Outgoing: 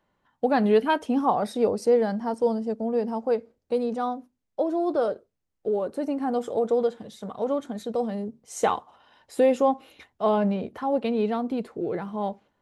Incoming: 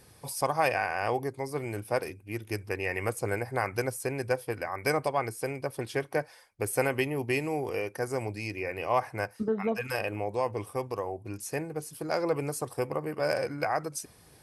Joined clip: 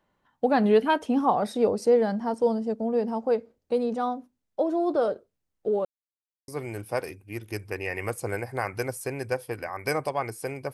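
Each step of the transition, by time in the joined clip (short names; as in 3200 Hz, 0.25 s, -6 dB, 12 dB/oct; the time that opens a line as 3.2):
outgoing
5.85–6.48 mute
6.48 switch to incoming from 1.47 s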